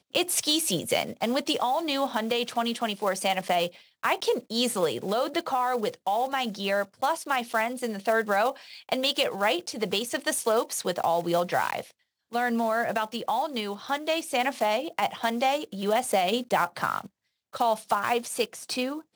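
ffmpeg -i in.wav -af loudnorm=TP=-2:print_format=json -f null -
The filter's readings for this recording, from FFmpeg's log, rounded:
"input_i" : "-27.3",
"input_tp" : "-10.2",
"input_lra" : "1.9",
"input_thresh" : "-37.5",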